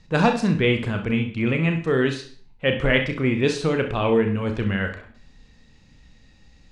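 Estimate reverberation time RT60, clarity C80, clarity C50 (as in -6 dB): 0.50 s, 14.0 dB, 9.0 dB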